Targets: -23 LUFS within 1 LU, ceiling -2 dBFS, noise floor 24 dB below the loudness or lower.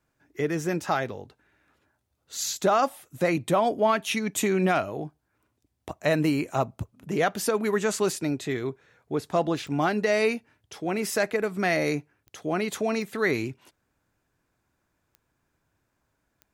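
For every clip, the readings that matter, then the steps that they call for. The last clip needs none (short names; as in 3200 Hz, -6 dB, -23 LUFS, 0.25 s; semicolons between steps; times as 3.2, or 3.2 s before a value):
clicks 5; loudness -26.5 LUFS; peak -10.5 dBFS; loudness target -23.0 LUFS
-> de-click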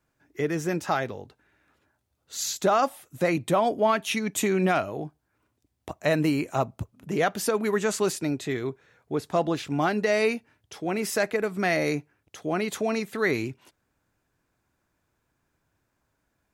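clicks 0; loudness -26.5 LUFS; peak -10.5 dBFS; loudness target -23.0 LUFS
-> gain +3.5 dB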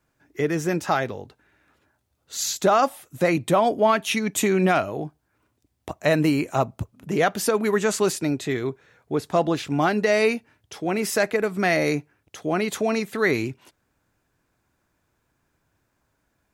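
loudness -23.0 LUFS; peak -7.0 dBFS; noise floor -73 dBFS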